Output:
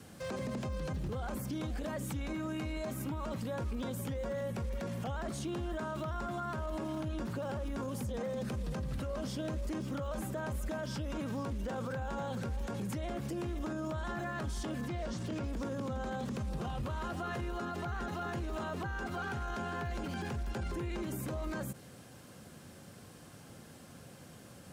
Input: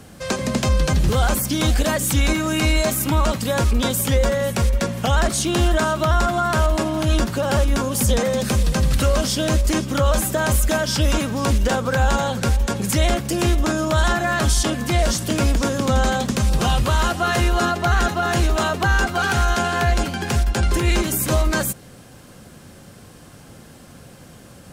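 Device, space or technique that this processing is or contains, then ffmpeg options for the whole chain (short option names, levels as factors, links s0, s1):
podcast mastering chain: -filter_complex "[0:a]asettb=1/sr,asplit=3[s0][s1][s2];[s0]atrim=end=14.884[s3];[s1]atrim=start=14.88:end=15.48,asetpts=PTS-STARTPTS,afade=t=in:d=0.004:c=qsin,afade=t=out:st=0.596:d=0.004:c=qsin,lowpass=6500[s4];[s2]atrim=start=15.476[s5];[s3][s4]acrossfade=d=0.004:c1=hsin:c2=qsin[s6];[s6][s5]acrossfade=d=0.004:c1=qsin:c2=hsin,adynamicequalizer=threshold=0.01:dfrequency=690:dqfactor=7:tfrequency=690:tqfactor=7:attack=5:release=100:ratio=0.375:range=2:mode=cutabove:tftype=bell,highpass=74,deesser=1,acompressor=threshold=0.0794:ratio=3,alimiter=limit=0.0841:level=0:latency=1:release=12,volume=0.376" -ar 48000 -c:a libmp3lame -b:a 112k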